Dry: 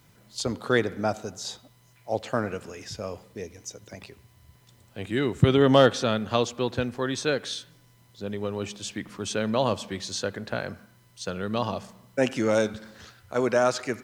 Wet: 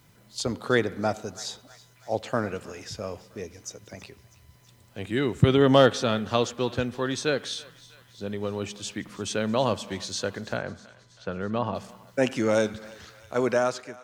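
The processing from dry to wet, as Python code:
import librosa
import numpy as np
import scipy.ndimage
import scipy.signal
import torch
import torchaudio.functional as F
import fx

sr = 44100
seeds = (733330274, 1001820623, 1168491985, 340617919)

y = fx.fade_out_tail(x, sr, length_s=0.53)
y = fx.dmg_crackle(y, sr, seeds[0], per_s=58.0, level_db=-49.0, at=(5.75, 6.44), fade=0.02)
y = fx.lowpass(y, sr, hz=2200.0, slope=12, at=(10.57, 11.75))
y = fx.echo_thinned(y, sr, ms=324, feedback_pct=66, hz=810.0, wet_db=-19.5)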